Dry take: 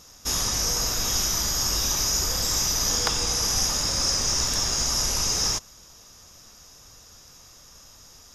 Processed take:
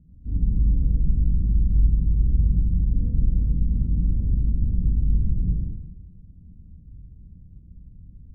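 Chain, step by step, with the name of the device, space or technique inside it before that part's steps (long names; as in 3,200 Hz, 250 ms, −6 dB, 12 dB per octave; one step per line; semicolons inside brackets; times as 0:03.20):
club heard from the street (brickwall limiter −16 dBFS, peak gain reduction 9.5 dB; low-pass filter 210 Hz 24 dB per octave; convolution reverb RT60 0.85 s, pre-delay 39 ms, DRR −3.5 dB)
level +6 dB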